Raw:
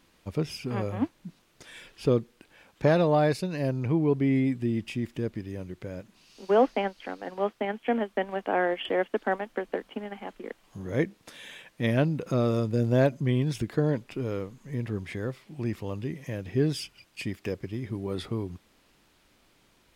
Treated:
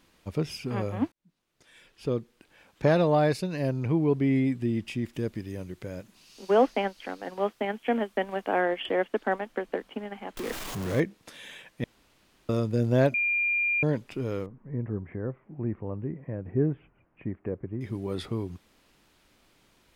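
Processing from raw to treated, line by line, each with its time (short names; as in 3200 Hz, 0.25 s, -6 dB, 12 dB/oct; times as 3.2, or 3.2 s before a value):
1.12–2.94 fade in
5.13–8.61 high shelf 5500 Hz +7 dB
10.37–11 zero-crossing step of -31 dBFS
11.84–12.49 room tone
13.14–13.83 bleep 2400 Hz -23 dBFS
14.46–17.81 Gaussian blur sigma 5.7 samples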